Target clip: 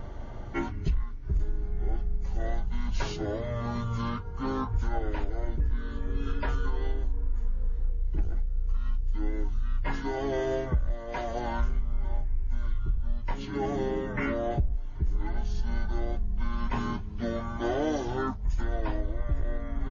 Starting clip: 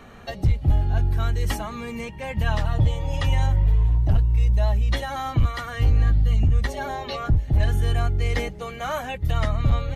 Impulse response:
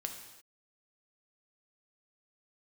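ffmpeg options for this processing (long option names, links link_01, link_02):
-filter_complex "[0:a]aeval=exprs='val(0)+0.0126*(sin(2*PI*50*n/s)+sin(2*PI*2*50*n/s)/2+sin(2*PI*3*50*n/s)/3+sin(2*PI*4*50*n/s)/4+sin(2*PI*5*50*n/s)/5)':channel_layout=same,asplit=2[link_01][link_02];[link_02]asetrate=35002,aresample=44100,atempo=1.25992,volume=-10dB[link_03];[link_01][link_03]amix=inputs=2:normalize=0,acompressor=threshold=-25dB:ratio=6,asplit=2[link_04][link_05];[link_05]asuperpass=centerf=1700:order=4:qfactor=1.6[link_06];[1:a]atrim=start_sample=2205,lowpass=1300[link_07];[link_06][link_07]afir=irnorm=-1:irlink=0,volume=-15.5dB[link_08];[link_04][link_08]amix=inputs=2:normalize=0,asetrate=22050,aresample=44100,volume=1dB"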